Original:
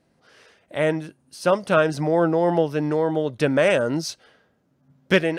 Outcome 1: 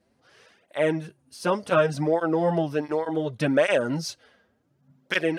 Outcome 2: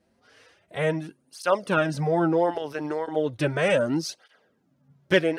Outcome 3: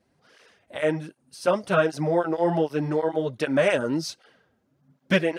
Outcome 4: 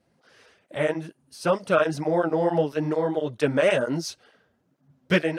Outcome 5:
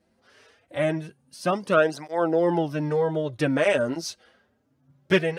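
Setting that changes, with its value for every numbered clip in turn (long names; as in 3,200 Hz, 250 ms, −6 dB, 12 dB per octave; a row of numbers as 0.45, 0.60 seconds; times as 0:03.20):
through-zero flanger with one copy inverted, nulls at: 0.68, 0.35, 1.3, 2.2, 0.24 Hertz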